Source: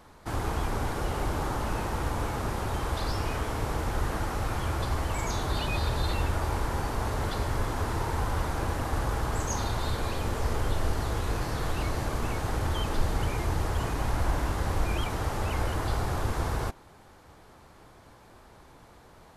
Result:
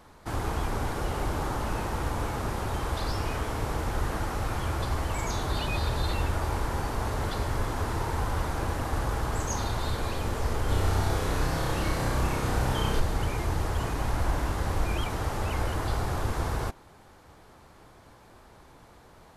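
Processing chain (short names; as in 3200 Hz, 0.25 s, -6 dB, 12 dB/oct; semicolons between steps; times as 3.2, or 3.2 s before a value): 10.65–13 flutter echo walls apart 5.4 m, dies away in 0.71 s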